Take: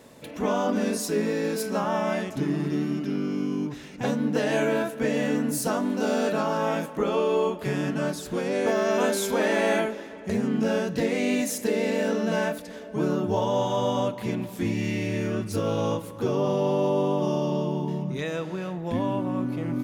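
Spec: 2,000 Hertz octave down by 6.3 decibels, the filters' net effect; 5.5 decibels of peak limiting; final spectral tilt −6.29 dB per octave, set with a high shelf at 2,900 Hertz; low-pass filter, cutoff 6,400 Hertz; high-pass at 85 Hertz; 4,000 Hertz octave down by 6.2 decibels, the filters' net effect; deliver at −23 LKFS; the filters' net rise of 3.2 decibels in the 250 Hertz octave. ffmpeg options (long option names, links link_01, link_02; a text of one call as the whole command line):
ffmpeg -i in.wav -af "highpass=85,lowpass=6400,equalizer=frequency=250:width_type=o:gain=4,equalizer=frequency=2000:width_type=o:gain=-8,highshelf=frequency=2900:gain=4.5,equalizer=frequency=4000:width_type=o:gain=-8.5,volume=3.5dB,alimiter=limit=-13dB:level=0:latency=1" out.wav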